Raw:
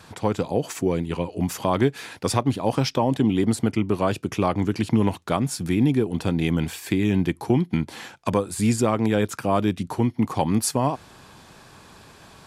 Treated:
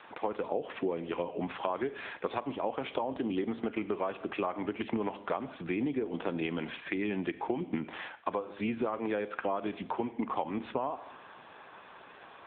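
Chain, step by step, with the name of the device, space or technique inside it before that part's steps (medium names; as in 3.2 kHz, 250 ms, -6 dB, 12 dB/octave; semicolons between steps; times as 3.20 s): treble shelf 9.6 kHz +6 dB; Schroeder reverb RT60 0.63 s, combs from 27 ms, DRR 14 dB; 7.59–8.01 s: dynamic bell 250 Hz, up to +5 dB, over -34 dBFS, Q 1.4; voicemail (band-pass 400–3100 Hz; compression 10:1, threshold -29 dBFS, peak gain reduction 12.5 dB; trim +1 dB; AMR-NB 7.95 kbps 8 kHz)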